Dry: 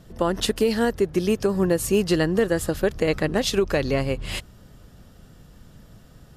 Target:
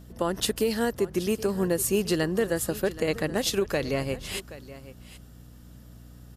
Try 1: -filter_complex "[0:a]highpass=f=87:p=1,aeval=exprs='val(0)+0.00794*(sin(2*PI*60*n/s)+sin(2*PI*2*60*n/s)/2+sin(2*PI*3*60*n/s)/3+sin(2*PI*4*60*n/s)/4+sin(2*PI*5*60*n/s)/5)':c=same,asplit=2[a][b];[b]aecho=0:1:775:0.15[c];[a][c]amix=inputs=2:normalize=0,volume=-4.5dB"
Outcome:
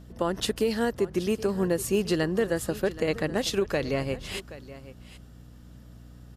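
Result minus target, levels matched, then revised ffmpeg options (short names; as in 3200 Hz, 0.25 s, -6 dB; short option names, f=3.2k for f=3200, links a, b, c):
8000 Hz band -4.5 dB
-filter_complex "[0:a]highpass=f=87:p=1,highshelf=f=8.7k:g=11,aeval=exprs='val(0)+0.00794*(sin(2*PI*60*n/s)+sin(2*PI*2*60*n/s)/2+sin(2*PI*3*60*n/s)/3+sin(2*PI*4*60*n/s)/4+sin(2*PI*5*60*n/s)/5)':c=same,asplit=2[a][b];[b]aecho=0:1:775:0.15[c];[a][c]amix=inputs=2:normalize=0,volume=-4.5dB"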